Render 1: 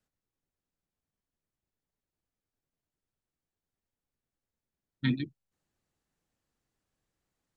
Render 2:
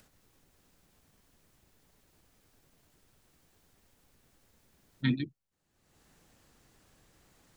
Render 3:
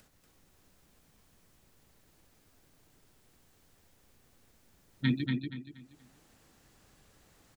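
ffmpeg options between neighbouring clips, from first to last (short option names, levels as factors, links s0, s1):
-af "acompressor=mode=upward:threshold=0.00447:ratio=2.5"
-af "aecho=1:1:237|474|711|948:0.631|0.189|0.0568|0.017"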